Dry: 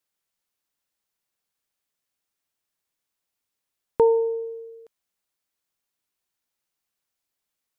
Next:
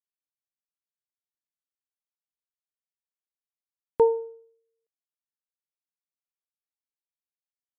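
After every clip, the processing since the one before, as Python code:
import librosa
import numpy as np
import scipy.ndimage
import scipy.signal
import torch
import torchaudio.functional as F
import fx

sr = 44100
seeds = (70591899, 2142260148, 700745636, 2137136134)

y = fx.upward_expand(x, sr, threshold_db=-39.0, expansion=2.5)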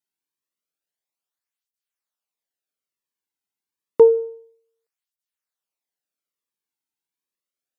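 y = fx.flanger_cancel(x, sr, hz=0.29, depth_ms=1.8)
y = y * 10.0 ** (8.5 / 20.0)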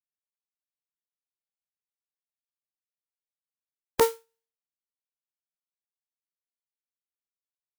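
y = fx.spec_flatten(x, sr, power=0.35)
y = fx.upward_expand(y, sr, threshold_db=-32.0, expansion=2.5)
y = y * 10.0 ** (-7.5 / 20.0)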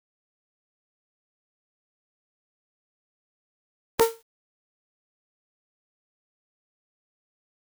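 y = fx.quant_dither(x, sr, seeds[0], bits=10, dither='none')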